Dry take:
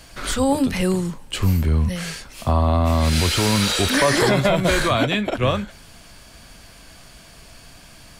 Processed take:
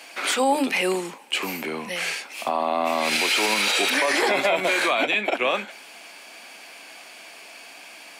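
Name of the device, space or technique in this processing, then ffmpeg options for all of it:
laptop speaker: -af "highpass=95,highpass=f=290:w=0.5412,highpass=f=290:w=1.3066,equalizer=f=800:t=o:w=0.43:g=7,equalizer=f=2.4k:t=o:w=0.57:g=11,alimiter=limit=-12dB:level=0:latency=1:release=80"

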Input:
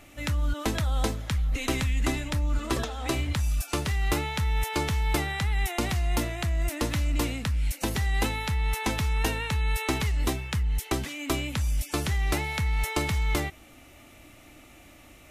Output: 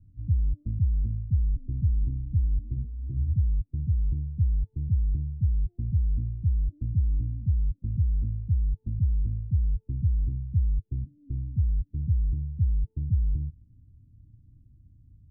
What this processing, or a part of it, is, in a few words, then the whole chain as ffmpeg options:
the neighbour's flat through the wall: -af "lowpass=f=170:w=0.5412,lowpass=f=170:w=1.3066,equalizer=f=100:t=o:w=0.84:g=7"

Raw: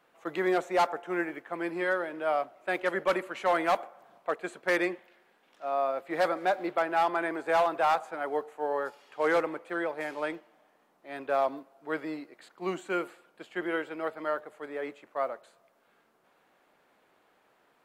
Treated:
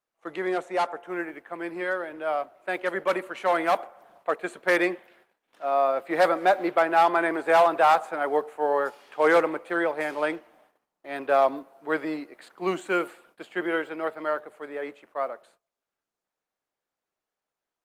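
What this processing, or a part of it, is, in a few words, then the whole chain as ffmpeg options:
video call: -filter_complex "[0:a]asettb=1/sr,asplit=3[a][b][c];[a]atrim=end=12.674[d];[b]atrim=start=12.67:end=13.45,asetpts=PTS-STARTPTS,afade=t=in:d=0.004:c=qsin,afade=t=out:st=0.776:d=0.004:c=qsin,highshelf=f=3.4k:g=2[e];[c]atrim=start=13.446[f];[d][e]acrossfade=d=0.004:c1=hsin:c2=qsin[g];[g][f]acrossfade=d=0.004:c1=qsin:c2=hsin,highpass=f=160:p=1,dynaudnorm=f=380:g=21:m=7dB,agate=range=-22dB:threshold=-57dB:ratio=16:detection=peak" -ar 48000 -c:a libopus -b:a 32k

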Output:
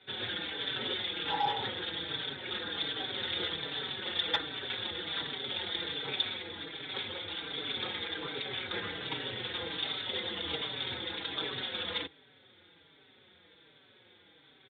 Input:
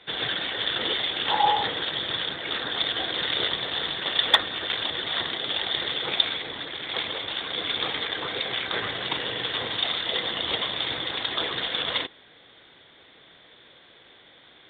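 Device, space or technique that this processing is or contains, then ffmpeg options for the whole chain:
barber-pole flanger into a guitar amplifier: -filter_complex "[0:a]asplit=2[a][b];[b]adelay=4.8,afreqshift=-1.3[c];[a][c]amix=inputs=2:normalize=1,asoftclip=type=tanh:threshold=-14.5dB,highpass=83,equalizer=f=87:t=q:w=4:g=7,equalizer=f=660:t=q:w=4:g=-9,equalizer=f=1.1k:t=q:w=4:g=-8,equalizer=f=1.9k:t=q:w=4:g=-5,equalizer=f=3k:t=q:w=4:g=-5,lowpass=f=4.1k:w=0.5412,lowpass=f=4.1k:w=1.3066,volume=-1.5dB"

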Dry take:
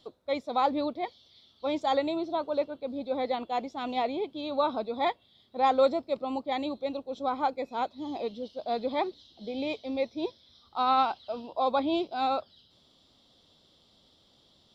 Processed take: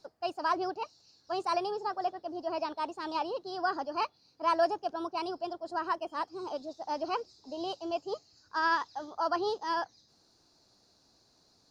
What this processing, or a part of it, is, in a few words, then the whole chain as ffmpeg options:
nightcore: -af "asetrate=55566,aresample=44100,volume=-3.5dB"

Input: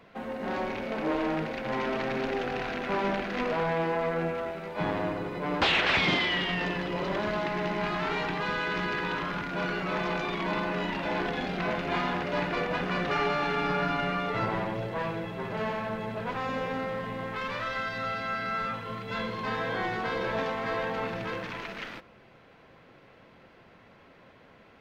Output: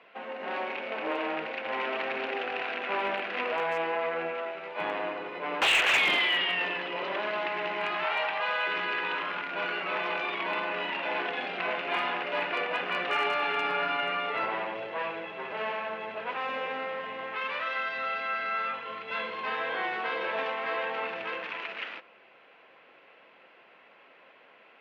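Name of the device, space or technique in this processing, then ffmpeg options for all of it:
megaphone: -filter_complex "[0:a]highpass=470,lowpass=3.1k,equalizer=f=2.7k:t=o:w=0.59:g=8,asoftclip=type=hard:threshold=-19dB,asettb=1/sr,asplit=3[a][b][c];[a]atrim=end=8.044[d];[b]atrim=start=8.04:end=8.67,asetpts=PTS-STARTPTS,afade=t=in:d=0.004:c=qsin,afade=t=out:st=0.626:d=0.004:c=qsin,lowshelf=f=470:t=q:w=3:g=-6[e];[c]atrim=start=8.666[f];[d][e]acrossfade=d=0.004:c1=hsin:c2=qsin[g];[g][f]acrossfade=d=0.004:c1=qsin:c2=hsin"

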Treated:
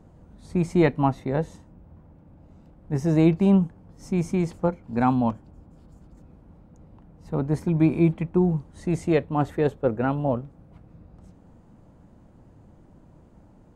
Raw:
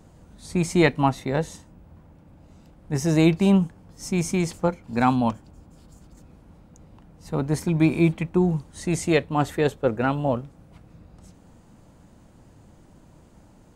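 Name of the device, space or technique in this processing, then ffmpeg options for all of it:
through cloth: -af "highshelf=f=2.1k:g=-14"

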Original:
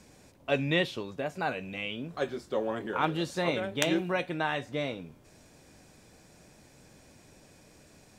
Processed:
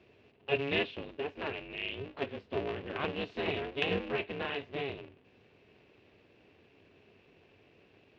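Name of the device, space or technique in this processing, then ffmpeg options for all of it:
ring modulator pedal into a guitar cabinet: -af "aeval=exprs='val(0)*sgn(sin(2*PI*140*n/s))':c=same,highpass=81,equalizer=f=97:t=q:w=4:g=7,equalizer=f=410:t=q:w=4:g=7,equalizer=f=860:t=q:w=4:g=-4,equalizer=f=1.3k:t=q:w=4:g=-5,equalizer=f=2.7k:t=q:w=4:g=9,lowpass=f=3.6k:w=0.5412,lowpass=f=3.6k:w=1.3066,volume=-6.5dB"

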